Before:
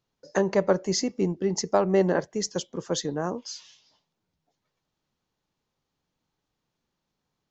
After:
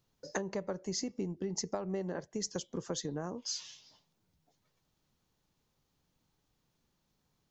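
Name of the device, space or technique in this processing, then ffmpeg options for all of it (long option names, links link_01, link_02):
ASMR close-microphone chain: -af "lowshelf=frequency=190:gain=7,acompressor=threshold=-34dB:ratio=8,highshelf=frequency=6300:gain=8"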